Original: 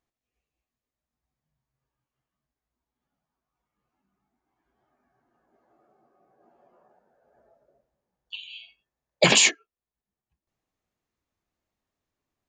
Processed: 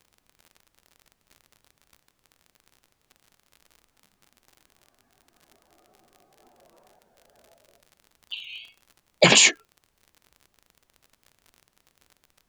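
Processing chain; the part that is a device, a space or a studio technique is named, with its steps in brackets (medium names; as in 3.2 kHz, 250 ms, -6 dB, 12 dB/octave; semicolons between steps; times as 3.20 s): warped LP (warped record 33 1/3 rpm, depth 100 cents; crackle 53 per s -41 dBFS; pink noise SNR 41 dB); trim +2.5 dB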